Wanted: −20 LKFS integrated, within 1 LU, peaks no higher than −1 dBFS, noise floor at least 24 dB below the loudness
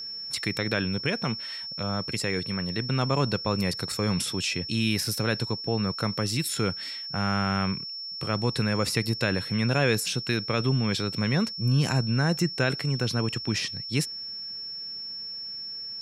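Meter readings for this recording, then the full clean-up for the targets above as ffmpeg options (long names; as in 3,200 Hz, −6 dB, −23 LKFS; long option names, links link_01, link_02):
interfering tone 5,400 Hz; level of the tone −34 dBFS; integrated loudness −27.5 LKFS; sample peak −9.0 dBFS; target loudness −20.0 LKFS
→ -af "bandreject=frequency=5400:width=30"
-af "volume=7.5dB"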